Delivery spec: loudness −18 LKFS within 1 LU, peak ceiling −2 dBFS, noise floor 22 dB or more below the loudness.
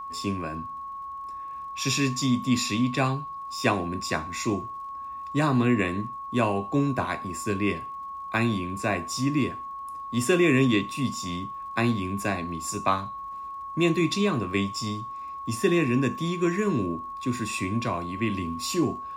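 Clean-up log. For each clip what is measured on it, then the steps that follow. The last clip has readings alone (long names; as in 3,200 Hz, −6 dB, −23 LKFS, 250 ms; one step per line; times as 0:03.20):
crackle rate 46 per second; interfering tone 1,100 Hz; level of the tone −34 dBFS; integrated loudness −27.0 LKFS; sample peak −8.0 dBFS; target loudness −18.0 LKFS
→ click removal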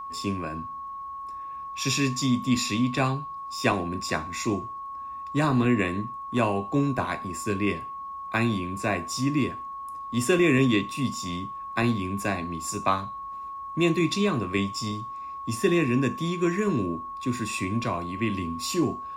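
crackle rate 0.10 per second; interfering tone 1,100 Hz; level of the tone −34 dBFS
→ notch filter 1,100 Hz, Q 30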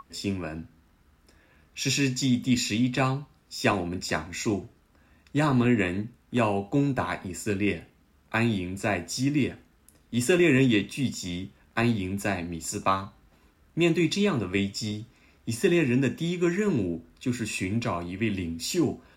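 interfering tone none found; integrated loudness −27.0 LKFS; sample peak −8.5 dBFS; target loudness −18.0 LKFS
→ level +9 dB
brickwall limiter −2 dBFS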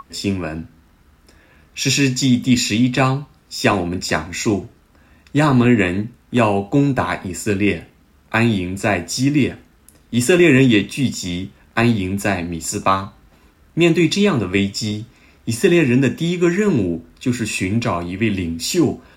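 integrated loudness −18.0 LKFS; sample peak −2.0 dBFS; background noise floor −53 dBFS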